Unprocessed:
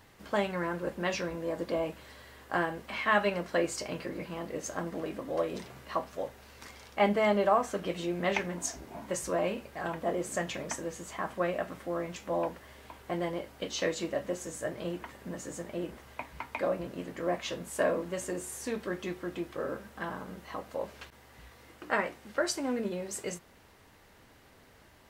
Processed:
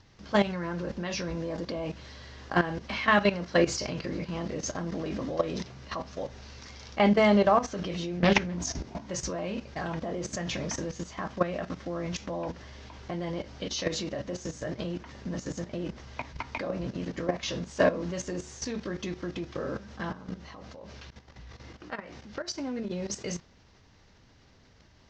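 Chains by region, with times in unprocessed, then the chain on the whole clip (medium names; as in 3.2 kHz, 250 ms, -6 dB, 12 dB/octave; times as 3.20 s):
8.17–8.79 s: high-pass 64 Hz 24 dB/octave + bass shelf 130 Hz +10 dB + loudspeaker Doppler distortion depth 0.27 ms
20.11–22.91 s: treble shelf 9.4 kHz -5.5 dB + compression 3:1, threshold -40 dBFS + tape noise reduction on one side only decoder only
whole clip: steep low-pass 6.1 kHz 48 dB/octave; tone controls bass +9 dB, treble +11 dB; level held to a coarse grid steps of 13 dB; trim +6 dB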